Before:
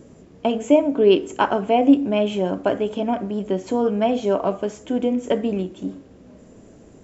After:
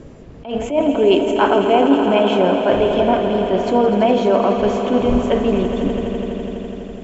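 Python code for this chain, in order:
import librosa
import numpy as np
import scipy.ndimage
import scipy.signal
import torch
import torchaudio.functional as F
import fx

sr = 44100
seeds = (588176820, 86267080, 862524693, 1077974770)

p1 = fx.dmg_wind(x, sr, seeds[0], corner_hz=110.0, level_db=-35.0)
p2 = scipy.signal.sosfilt(scipy.signal.butter(2, 4500.0, 'lowpass', fs=sr, output='sos'), p1)
p3 = fx.low_shelf(p2, sr, hz=240.0, db=-9.0)
p4 = fx.over_compress(p3, sr, threshold_db=-23.0, ratio=-1.0)
p5 = p3 + (p4 * 10.0 ** (-0.5 / 20.0))
p6 = fx.echo_swell(p5, sr, ms=83, loudest=5, wet_db=-12)
p7 = fx.attack_slew(p6, sr, db_per_s=140.0)
y = p7 * 10.0 ** (1.5 / 20.0)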